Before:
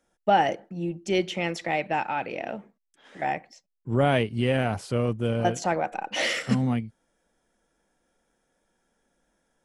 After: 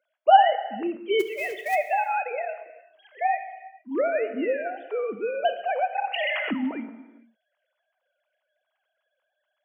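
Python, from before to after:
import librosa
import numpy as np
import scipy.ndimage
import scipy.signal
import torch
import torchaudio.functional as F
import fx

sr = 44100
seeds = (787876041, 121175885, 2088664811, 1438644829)

y = fx.sine_speech(x, sr)
y = scipy.signal.sosfilt(scipy.signal.butter(4, 210.0, 'highpass', fs=sr, output='sos'), y)
y = fx.high_shelf(y, sr, hz=2500.0, db=7.0)
y = fx.quant_float(y, sr, bits=2, at=(1.19, 1.74), fade=0.02)
y = fx.air_absorb(y, sr, metres=410.0, at=(4.07, 4.75), fade=0.02)
y = fx.rev_gated(y, sr, seeds[0], gate_ms=480, shape='falling', drr_db=9.0)
y = fx.sustainer(y, sr, db_per_s=20.0, at=(6.06, 6.51))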